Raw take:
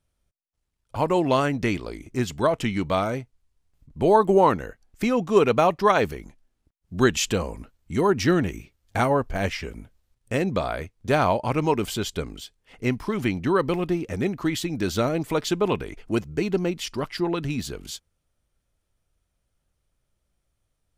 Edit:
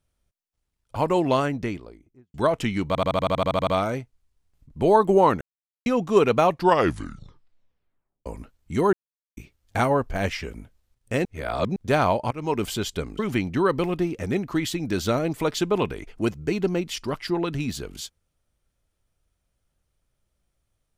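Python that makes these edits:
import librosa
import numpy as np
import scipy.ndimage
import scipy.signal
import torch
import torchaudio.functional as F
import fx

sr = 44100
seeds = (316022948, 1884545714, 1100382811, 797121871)

y = fx.studio_fade_out(x, sr, start_s=1.2, length_s=1.14)
y = fx.edit(y, sr, fx.stutter(start_s=2.87, slice_s=0.08, count=11),
    fx.silence(start_s=4.61, length_s=0.45),
    fx.tape_stop(start_s=5.66, length_s=1.8),
    fx.silence(start_s=8.13, length_s=0.44),
    fx.reverse_span(start_s=10.45, length_s=0.51),
    fx.fade_in_from(start_s=11.51, length_s=0.3, floor_db=-20.5),
    fx.cut(start_s=12.39, length_s=0.7), tone=tone)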